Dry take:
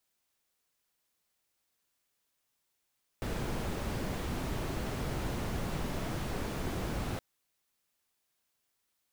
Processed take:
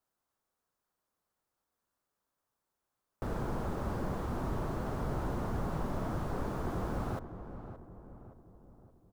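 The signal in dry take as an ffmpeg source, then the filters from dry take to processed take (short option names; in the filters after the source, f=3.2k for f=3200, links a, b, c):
-f lavfi -i "anoisesrc=c=brown:a=0.0881:d=3.97:r=44100:seed=1"
-filter_complex "[0:a]highshelf=f=1.7k:t=q:w=1.5:g=-9.5,asplit=2[a][b];[b]adelay=572,lowpass=f=1.2k:p=1,volume=-10dB,asplit=2[c][d];[d]adelay=572,lowpass=f=1.2k:p=1,volume=0.51,asplit=2[e][f];[f]adelay=572,lowpass=f=1.2k:p=1,volume=0.51,asplit=2[g][h];[h]adelay=572,lowpass=f=1.2k:p=1,volume=0.51,asplit=2[i][j];[j]adelay=572,lowpass=f=1.2k:p=1,volume=0.51,asplit=2[k][l];[l]adelay=572,lowpass=f=1.2k:p=1,volume=0.51[m];[c][e][g][i][k][m]amix=inputs=6:normalize=0[n];[a][n]amix=inputs=2:normalize=0"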